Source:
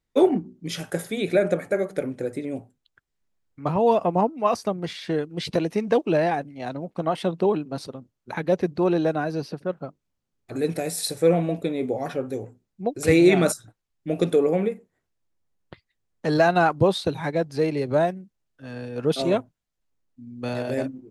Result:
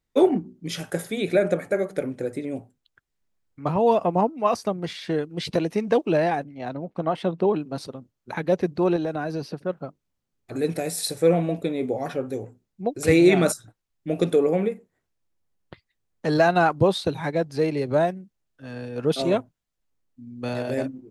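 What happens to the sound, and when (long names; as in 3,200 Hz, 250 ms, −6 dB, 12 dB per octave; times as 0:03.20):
0:06.44–0:07.56: low-pass filter 3,000 Hz 6 dB per octave
0:08.96–0:09.51: downward compressor 5 to 1, threshold −23 dBFS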